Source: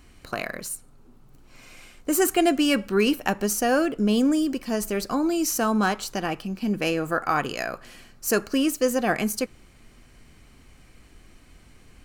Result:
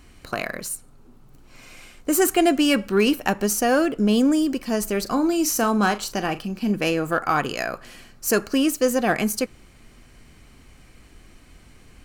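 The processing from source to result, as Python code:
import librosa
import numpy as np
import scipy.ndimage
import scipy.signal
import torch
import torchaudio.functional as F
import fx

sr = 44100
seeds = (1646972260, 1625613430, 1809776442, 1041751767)

p1 = fx.clip_asym(x, sr, top_db=-21.5, bottom_db=-13.0)
p2 = x + F.gain(torch.from_numpy(p1), -9.0).numpy()
y = fx.doubler(p2, sr, ms=39.0, db=-13.0, at=(5.02, 6.72))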